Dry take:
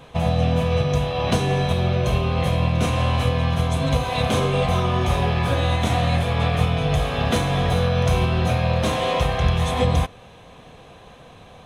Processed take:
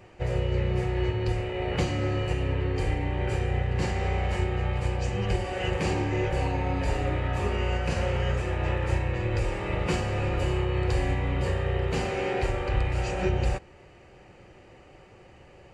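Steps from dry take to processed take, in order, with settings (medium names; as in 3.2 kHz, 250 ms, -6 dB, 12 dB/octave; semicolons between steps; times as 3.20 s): speed mistake 45 rpm record played at 33 rpm; trim -6.5 dB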